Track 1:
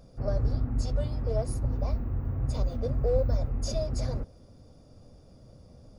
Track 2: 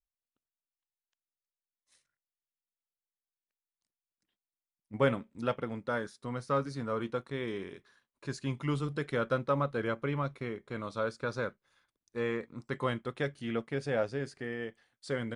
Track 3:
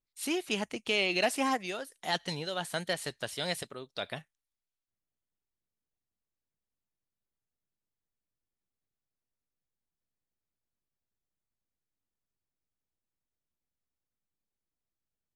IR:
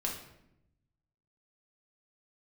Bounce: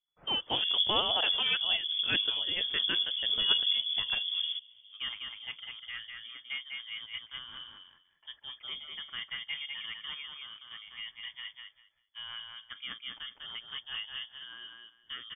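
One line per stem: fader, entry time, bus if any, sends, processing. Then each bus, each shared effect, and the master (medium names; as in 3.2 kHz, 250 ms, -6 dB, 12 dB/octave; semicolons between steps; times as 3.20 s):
-4.0 dB, 0.35 s, no send, no echo send, none
-9.5 dB, 0.00 s, no send, echo send -4 dB, peaking EQ 1.7 kHz +5 dB 2 oct
+0.5 dB, 0.00 s, no send, no echo send, none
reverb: none
echo: feedback delay 199 ms, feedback 18%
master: rotary cabinet horn 5 Hz; frequency inversion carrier 3.4 kHz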